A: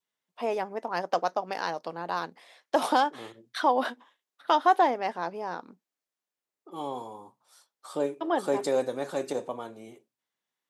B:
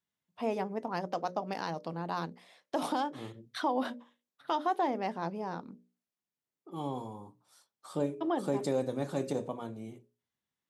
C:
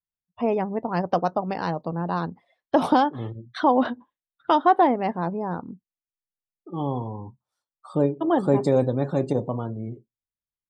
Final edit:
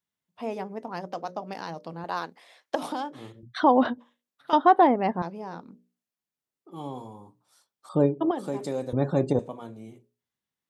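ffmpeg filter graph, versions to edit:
-filter_complex "[2:a]asplit=4[a][b][c][d];[1:a]asplit=6[e][f][g][h][i][j];[e]atrim=end=2.042[k];[0:a]atrim=start=2.038:end=2.752[l];[f]atrim=start=2.748:end=3.432[m];[a]atrim=start=3.428:end=3.982[n];[g]atrim=start=3.978:end=4.532[o];[b]atrim=start=4.528:end=5.222[p];[h]atrim=start=5.218:end=7.892[q];[c]atrim=start=7.888:end=8.312[r];[i]atrim=start=8.308:end=8.932[s];[d]atrim=start=8.928:end=9.392[t];[j]atrim=start=9.388[u];[k][l]acrossfade=d=0.004:c1=hsin:c2=hsin[v];[v][m]acrossfade=d=0.004:c1=hsin:c2=hsin[w];[w][n]acrossfade=d=0.004:c1=hsin:c2=hsin[x];[x][o]acrossfade=d=0.004:c1=hsin:c2=hsin[y];[y][p]acrossfade=d=0.004:c1=hsin:c2=hsin[z];[z][q]acrossfade=d=0.004:c1=hsin:c2=hsin[aa];[aa][r]acrossfade=d=0.004:c1=hsin:c2=hsin[ab];[ab][s]acrossfade=d=0.004:c1=hsin:c2=hsin[ac];[ac][t]acrossfade=d=0.004:c1=hsin:c2=hsin[ad];[ad][u]acrossfade=d=0.004:c1=hsin:c2=hsin"

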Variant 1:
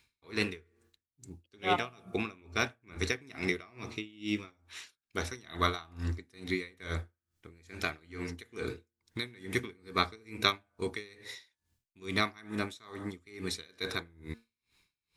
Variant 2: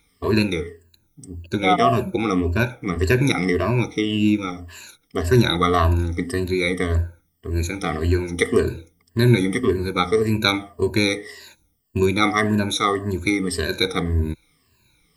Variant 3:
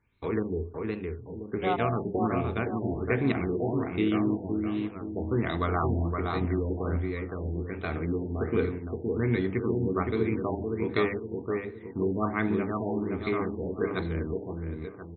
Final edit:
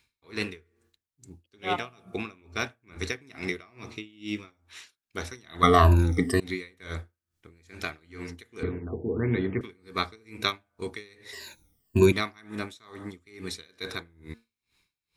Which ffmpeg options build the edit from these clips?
-filter_complex "[1:a]asplit=2[a][b];[0:a]asplit=4[c][d][e][f];[c]atrim=end=5.632[g];[a]atrim=start=5.628:end=6.402[h];[d]atrim=start=6.398:end=8.632[i];[2:a]atrim=start=8.628:end=9.612[j];[e]atrim=start=9.608:end=11.332[k];[b]atrim=start=11.328:end=12.122[l];[f]atrim=start=12.118[m];[g][h]acrossfade=d=0.004:c1=hsin:c2=hsin[n];[n][i]acrossfade=d=0.004:c1=hsin:c2=hsin[o];[o][j]acrossfade=d=0.004:c1=hsin:c2=hsin[p];[p][k]acrossfade=d=0.004:c1=hsin:c2=hsin[q];[q][l]acrossfade=d=0.004:c1=hsin:c2=hsin[r];[r][m]acrossfade=d=0.004:c1=hsin:c2=hsin"

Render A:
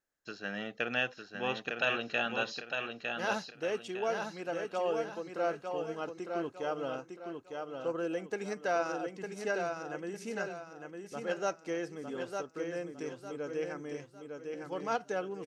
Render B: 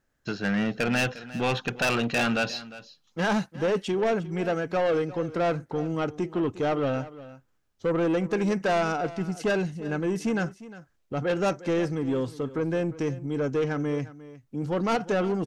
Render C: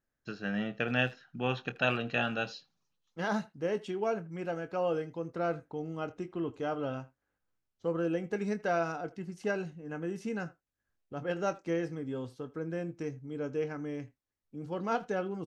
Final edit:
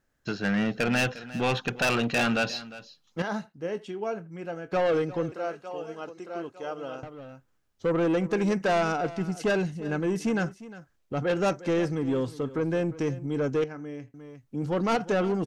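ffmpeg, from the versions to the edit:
-filter_complex "[2:a]asplit=2[a][b];[1:a]asplit=4[c][d][e][f];[c]atrim=end=3.222[g];[a]atrim=start=3.218:end=4.722[h];[d]atrim=start=4.718:end=5.322[i];[0:a]atrim=start=5.318:end=7.032[j];[e]atrim=start=7.028:end=13.642[k];[b]atrim=start=13.638:end=14.142[l];[f]atrim=start=14.138[m];[g][h]acrossfade=d=0.004:c1=hsin:c2=hsin[n];[n][i]acrossfade=d=0.004:c1=hsin:c2=hsin[o];[o][j]acrossfade=d=0.004:c1=hsin:c2=hsin[p];[p][k]acrossfade=d=0.004:c1=hsin:c2=hsin[q];[q][l]acrossfade=d=0.004:c1=hsin:c2=hsin[r];[r][m]acrossfade=d=0.004:c1=hsin:c2=hsin"

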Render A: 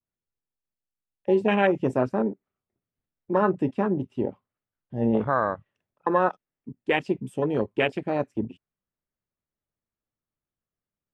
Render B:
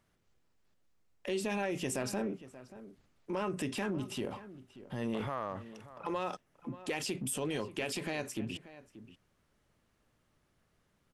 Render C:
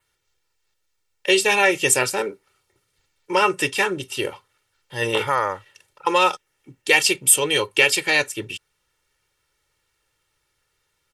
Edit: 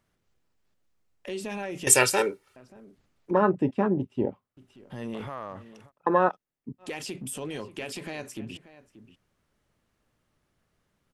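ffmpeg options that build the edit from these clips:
-filter_complex "[0:a]asplit=2[a][b];[1:a]asplit=4[c][d][e][f];[c]atrim=end=1.872[g];[2:a]atrim=start=1.868:end=2.562[h];[d]atrim=start=2.558:end=3.312[i];[a]atrim=start=3.308:end=4.572[j];[e]atrim=start=4.568:end=5.92[k];[b]atrim=start=5.86:end=6.84[l];[f]atrim=start=6.78[m];[g][h]acrossfade=d=0.004:c1=hsin:c2=hsin[n];[n][i]acrossfade=d=0.004:c1=hsin:c2=hsin[o];[o][j]acrossfade=d=0.004:c1=hsin:c2=hsin[p];[p][k]acrossfade=d=0.004:c1=hsin:c2=hsin[q];[q][l]acrossfade=d=0.06:c1=tri:c2=tri[r];[r][m]acrossfade=d=0.06:c1=tri:c2=tri"

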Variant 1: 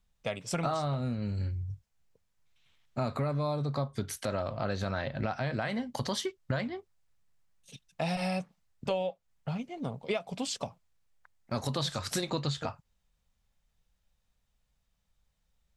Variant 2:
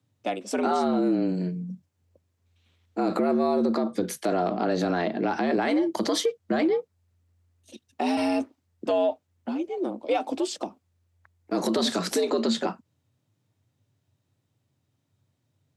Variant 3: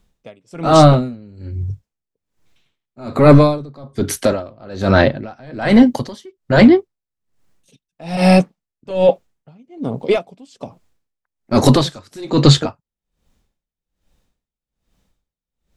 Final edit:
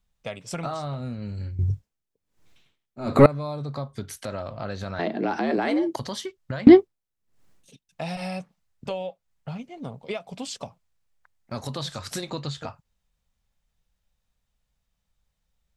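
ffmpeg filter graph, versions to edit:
-filter_complex "[2:a]asplit=2[a][b];[0:a]asplit=4[c][d][e][f];[c]atrim=end=1.592[g];[a]atrim=start=1.588:end=3.262[h];[d]atrim=start=3.258:end=4.992[i];[1:a]atrim=start=4.988:end=5.962[j];[e]atrim=start=5.958:end=6.672[k];[b]atrim=start=6.668:end=7.892[l];[f]atrim=start=7.888[m];[g][h]acrossfade=d=0.004:c1=hsin:c2=hsin[n];[n][i]acrossfade=d=0.004:c1=hsin:c2=hsin[o];[o][j]acrossfade=d=0.004:c1=hsin:c2=hsin[p];[p][k]acrossfade=d=0.004:c1=hsin:c2=hsin[q];[q][l]acrossfade=d=0.004:c1=hsin:c2=hsin[r];[r][m]acrossfade=d=0.004:c1=hsin:c2=hsin"

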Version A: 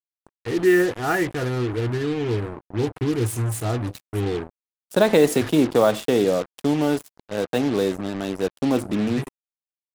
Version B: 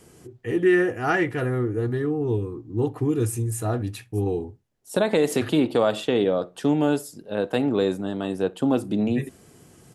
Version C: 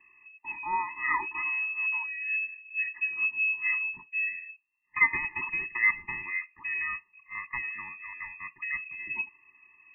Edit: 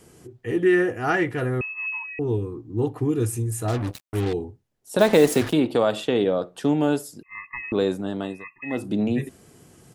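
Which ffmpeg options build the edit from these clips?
-filter_complex "[2:a]asplit=3[a][b][c];[0:a]asplit=2[d][e];[1:a]asplit=6[f][g][h][i][j][k];[f]atrim=end=1.612[l];[a]atrim=start=1.608:end=2.192[m];[g]atrim=start=2.188:end=3.682[n];[d]atrim=start=3.678:end=4.332[o];[h]atrim=start=4.328:end=4.992[p];[e]atrim=start=4.988:end=5.532[q];[i]atrim=start=5.528:end=7.232[r];[b]atrim=start=7.228:end=7.722[s];[j]atrim=start=7.718:end=8.45[t];[c]atrim=start=8.21:end=8.86[u];[k]atrim=start=8.62[v];[l][m]acrossfade=d=0.004:c1=hsin:c2=hsin[w];[w][n]acrossfade=d=0.004:c1=hsin:c2=hsin[x];[x][o]acrossfade=d=0.004:c1=hsin:c2=hsin[y];[y][p]acrossfade=d=0.004:c1=hsin:c2=hsin[z];[z][q]acrossfade=d=0.004:c1=hsin:c2=hsin[aa];[aa][r]acrossfade=d=0.004:c1=hsin:c2=hsin[ab];[ab][s]acrossfade=d=0.004:c1=hsin:c2=hsin[ac];[ac][t]acrossfade=d=0.004:c1=hsin:c2=hsin[ad];[ad][u]acrossfade=d=0.24:c1=tri:c2=tri[ae];[ae][v]acrossfade=d=0.24:c1=tri:c2=tri"

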